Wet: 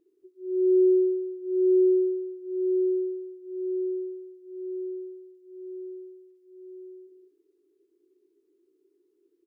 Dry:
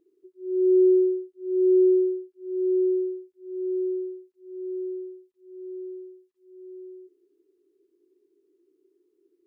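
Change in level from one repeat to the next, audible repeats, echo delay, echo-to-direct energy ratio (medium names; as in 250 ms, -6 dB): no regular repeats, 2, 71 ms, -9.5 dB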